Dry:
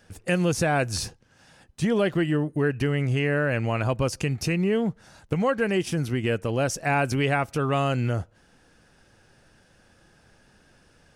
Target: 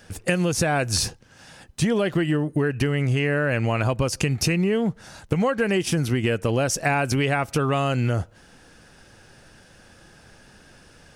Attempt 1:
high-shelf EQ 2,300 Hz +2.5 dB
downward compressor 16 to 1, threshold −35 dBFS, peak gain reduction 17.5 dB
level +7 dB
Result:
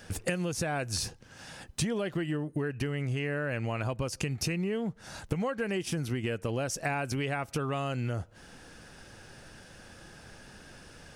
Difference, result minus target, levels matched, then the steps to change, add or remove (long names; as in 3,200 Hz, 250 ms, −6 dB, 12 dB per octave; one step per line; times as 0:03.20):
downward compressor: peak gain reduction +10 dB
change: downward compressor 16 to 1, threshold −24.5 dBFS, peak gain reduction 8 dB